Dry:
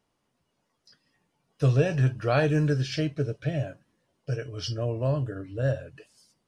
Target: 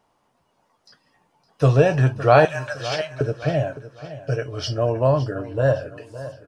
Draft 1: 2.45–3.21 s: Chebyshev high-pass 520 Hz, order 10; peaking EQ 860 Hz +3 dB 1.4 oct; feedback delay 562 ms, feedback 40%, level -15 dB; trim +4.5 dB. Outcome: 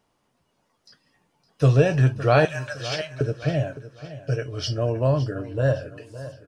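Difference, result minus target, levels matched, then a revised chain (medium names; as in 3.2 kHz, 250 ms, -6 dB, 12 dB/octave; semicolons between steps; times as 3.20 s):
1 kHz band -4.0 dB
2.45–3.21 s: Chebyshev high-pass 520 Hz, order 10; peaking EQ 860 Hz +10.5 dB 1.4 oct; feedback delay 562 ms, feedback 40%, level -15 dB; trim +4.5 dB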